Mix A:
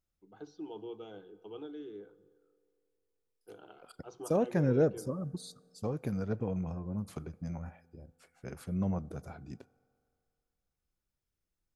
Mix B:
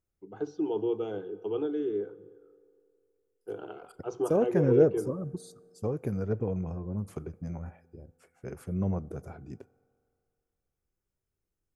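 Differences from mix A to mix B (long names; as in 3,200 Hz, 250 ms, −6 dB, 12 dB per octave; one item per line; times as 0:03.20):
first voice +9.0 dB
master: add graphic EQ with 15 bands 100 Hz +5 dB, 400 Hz +7 dB, 4,000 Hz −9 dB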